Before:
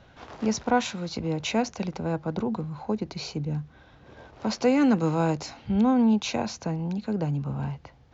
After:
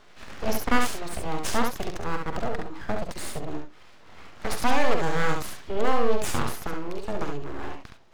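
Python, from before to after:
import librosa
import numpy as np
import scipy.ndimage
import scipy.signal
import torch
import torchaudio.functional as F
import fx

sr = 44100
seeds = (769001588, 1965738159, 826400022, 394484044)

y = fx.peak_eq(x, sr, hz=80.0, db=-12.5, octaves=1.9)
y = np.abs(y)
y = fx.room_early_taps(y, sr, ms=(47, 69), db=(-10.5, -4.5))
y = y * librosa.db_to_amplitude(3.5)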